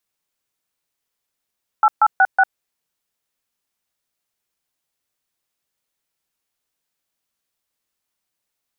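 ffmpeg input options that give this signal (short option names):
-f lavfi -i "aevalsrc='0.251*clip(min(mod(t,0.185),0.051-mod(t,0.185))/0.002,0,1)*(eq(floor(t/0.185),0)*(sin(2*PI*852*mod(t,0.185))+sin(2*PI*1336*mod(t,0.185)))+eq(floor(t/0.185),1)*(sin(2*PI*852*mod(t,0.185))+sin(2*PI*1336*mod(t,0.185)))+eq(floor(t/0.185),2)*(sin(2*PI*770*mod(t,0.185))+sin(2*PI*1477*mod(t,0.185)))+eq(floor(t/0.185),3)*(sin(2*PI*770*mod(t,0.185))+sin(2*PI*1477*mod(t,0.185))))':d=0.74:s=44100"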